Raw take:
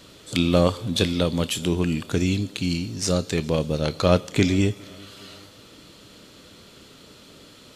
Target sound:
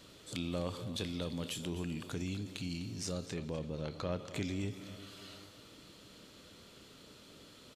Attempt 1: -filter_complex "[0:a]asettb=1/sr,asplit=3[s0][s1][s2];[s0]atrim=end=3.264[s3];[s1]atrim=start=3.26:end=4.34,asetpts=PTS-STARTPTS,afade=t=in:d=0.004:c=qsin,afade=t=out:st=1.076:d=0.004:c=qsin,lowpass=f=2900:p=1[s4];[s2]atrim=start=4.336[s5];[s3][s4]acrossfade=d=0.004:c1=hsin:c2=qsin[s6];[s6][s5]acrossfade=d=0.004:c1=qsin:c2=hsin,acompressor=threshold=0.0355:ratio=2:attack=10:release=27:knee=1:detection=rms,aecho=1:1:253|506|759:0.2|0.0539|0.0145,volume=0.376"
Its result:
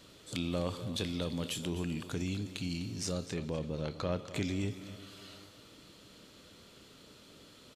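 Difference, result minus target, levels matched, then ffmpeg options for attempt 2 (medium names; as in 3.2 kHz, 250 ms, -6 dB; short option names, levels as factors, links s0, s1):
compression: peak gain reduction -3 dB
-filter_complex "[0:a]asettb=1/sr,asplit=3[s0][s1][s2];[s0]atrim=end=3.264[s3];[s1]atrim=start=3.26:end=4.34,asetpts=PTS-STARTPTS,afade=t=in:d=0.004:c=qsin,afade=t=out:st=1.076:d=0.004:c=qsin,lowpass=f=2900:p=1[s4];[s2]atrim=start=4.336[s5];[s3][s4]acrossfade=d=0.004:c1=hsin:c2=qsin[s6];[s6][s5]acrossfade=d=0.004:c1=qsin:c2=hsin,acompressor=threshold=0.0178:ratio=2:attack=10:release=27:knee=1:detection=rms,aecho=1:1:253|506|759:0.2|0.0539|0.0145,volume=0.376"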